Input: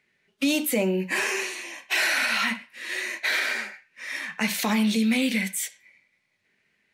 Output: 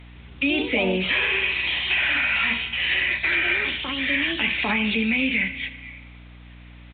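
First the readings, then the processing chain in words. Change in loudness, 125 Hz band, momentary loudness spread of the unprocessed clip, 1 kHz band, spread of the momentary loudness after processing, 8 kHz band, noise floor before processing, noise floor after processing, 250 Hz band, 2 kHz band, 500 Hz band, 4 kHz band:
+4.0 dB, can't be measured, 11 LU, +0.5 dB, 6 LU, below −40 dB, −72 dBFS, −44 dBFS, −1.5 dB, +5.5 dB, +1.0 dB, +5.5 dB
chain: high-pass filter 120 Hz 24 dB per octave
parametric band 2,500 Hz +12 dB 0.66 octaves
comb filter 7.1 ms, depth 38%
spring reverb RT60 1.4 s, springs 30 ms, chirp 70 ms, DRR 17.5 dB
in parallel at −2 dB: downward compressor, threshold −33 dBFS, peak gain reduction 20 dB
on the sum: brickwall limiter −12.5 dBFS, peak gain reduction 9.5 dB
mains hum 60 Hz, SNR 20 dB
bit-depth reduction 8 bits, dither triangular
delay with pitch and tempo change per echo 159 ms, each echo +4 semitones, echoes 2, each echo −6 dB
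treble cut that deepens with the level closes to 2,800 Hz, closed at −16.5 dBFS
downsampling to 8,000 Hz
Opus 128 kbit/s 48,000 Hz

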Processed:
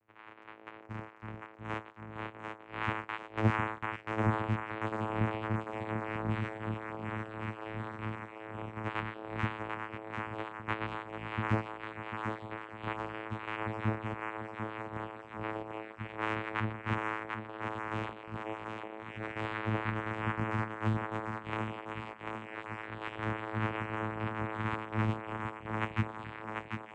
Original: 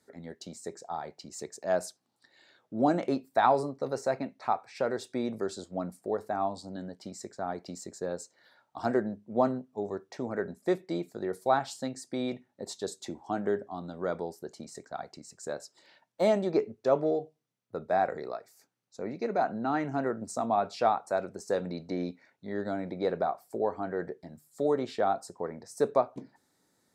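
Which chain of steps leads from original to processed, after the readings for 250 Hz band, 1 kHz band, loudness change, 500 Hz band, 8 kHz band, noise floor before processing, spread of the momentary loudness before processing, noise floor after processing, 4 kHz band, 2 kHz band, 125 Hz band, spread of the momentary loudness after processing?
−4.5 dB, −5.0 dB, −5.0 dB, −11.0 dB, below −15 dB, −75 dBFS, 15 LU, −52 dBFS, −2.5 dB, +4.5 dB, +7.5 dB, 10 LU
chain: neighbouring bands swapped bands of 1,000 Hz
Chebyshev low-pass filter 900 Hz, order 2
delay with pitch and tempo change per echo 164 ms, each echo −3 semitones, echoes 3
channel vocoder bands 4, saw 109 Hz
feedback echo with a high-pass in the loop 743 ms, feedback 66%, high-pass 230 Hz, level −4 dB

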